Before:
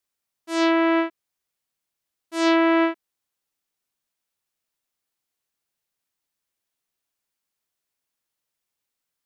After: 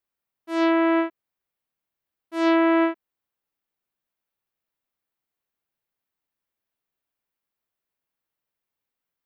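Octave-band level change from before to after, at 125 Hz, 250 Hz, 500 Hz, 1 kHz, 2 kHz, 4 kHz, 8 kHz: can't be measured, 0.0 dB, −0.5 dB, −1.0 dB, −2.5 dB, −6.0 dB, below −10 dB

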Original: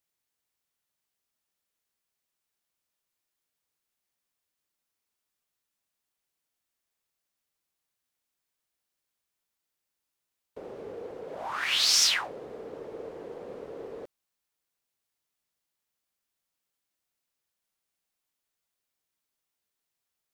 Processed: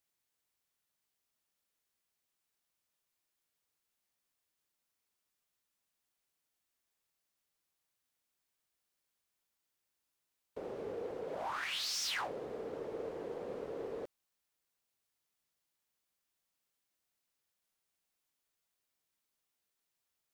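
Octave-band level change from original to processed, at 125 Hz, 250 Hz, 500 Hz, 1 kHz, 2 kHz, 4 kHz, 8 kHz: −1.5, −1.5, −1.0, −4.5, −9.5, −13.5, −15.0 decibels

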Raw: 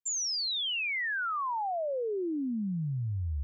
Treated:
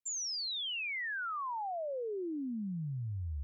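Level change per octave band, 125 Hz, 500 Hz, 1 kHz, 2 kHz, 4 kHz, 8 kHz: −5.5 dB, −5.5 dB, −5.5 dB, −5.5 dB, −5.5 dB, can't be measured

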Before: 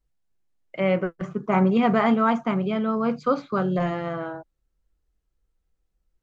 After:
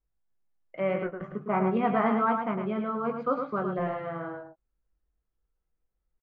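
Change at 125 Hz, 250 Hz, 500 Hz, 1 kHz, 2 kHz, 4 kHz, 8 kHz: −8.5 dB, −7.5 dB, −4.5 dB, −3.0 dB, −5.5 dB, below −10 dB, can't be measured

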